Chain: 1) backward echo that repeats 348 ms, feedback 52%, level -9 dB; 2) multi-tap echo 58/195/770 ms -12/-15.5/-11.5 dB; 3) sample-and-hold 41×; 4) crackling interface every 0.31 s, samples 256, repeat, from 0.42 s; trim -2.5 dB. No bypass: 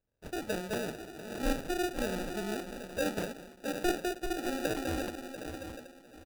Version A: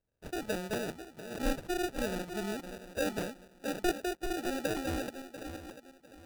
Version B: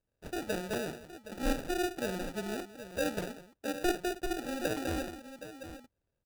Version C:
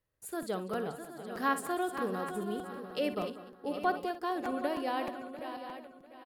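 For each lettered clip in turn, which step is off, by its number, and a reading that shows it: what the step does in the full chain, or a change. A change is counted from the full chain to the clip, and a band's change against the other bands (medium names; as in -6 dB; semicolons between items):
2, momentary loudness spread change +1 LU; 1, momentary loudness spread change +4 LU; 3, 1 kHz band +8.5 dB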